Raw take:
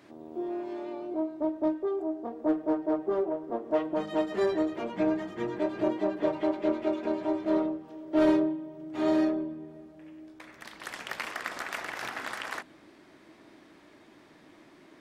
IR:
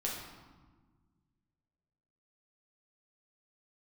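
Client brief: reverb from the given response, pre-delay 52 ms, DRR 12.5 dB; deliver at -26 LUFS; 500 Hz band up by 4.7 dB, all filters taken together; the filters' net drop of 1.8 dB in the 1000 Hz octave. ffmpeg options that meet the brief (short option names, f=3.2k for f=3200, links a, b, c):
-filter_complex "[0:a]equalizer=f=500:t=o:g=8.5,equalizer=f=1k:t=o:g=-5.5,asplit=2[a][b];[1:a]atrim=start_sample=2205,adelay=52[c];[b][c]afir=irnorm=-1:irlink=0,volume=-15.5dB[d];[a][d]amix=inputs=2:normalize=0,volume=0.5dB"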